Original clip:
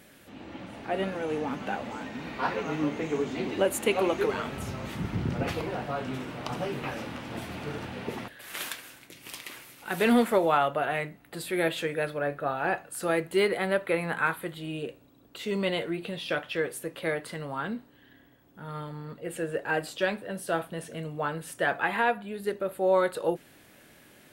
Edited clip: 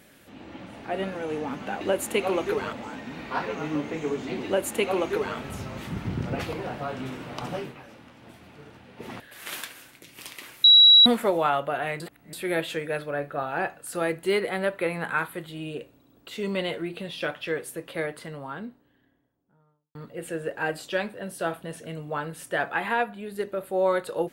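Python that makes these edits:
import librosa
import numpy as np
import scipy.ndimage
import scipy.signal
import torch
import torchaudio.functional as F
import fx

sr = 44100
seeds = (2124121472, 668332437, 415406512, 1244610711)

y = fx.studio_fade_out(x, sr, start_s=16.9, length_s=2.13)
y = fx.edit(y, sr, fx.duplicate(start_s=3.53, length_s=0.92, to_s=1.81),
    fx.fade_down_up(start_s=6.66, length_s=1.56, db=-12.0, fade_s=0.18),
    fx.bleep(start_s=9.72, length_s=0.42, hz=3890.0, db=-10.0),
    fx.reverse_span(start_s=11.08, length_s=0.33), tone=tone)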